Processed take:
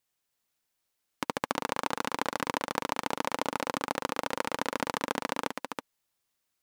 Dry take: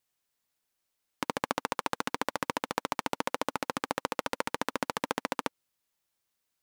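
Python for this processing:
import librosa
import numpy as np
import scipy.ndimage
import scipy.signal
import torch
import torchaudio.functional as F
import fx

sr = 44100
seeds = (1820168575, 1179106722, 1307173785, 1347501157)

y = x + 10.0 ** (-5.5 / 20.0) * np.pad(x, (int(325 * sr / 1000.0), 0))[:len(x)]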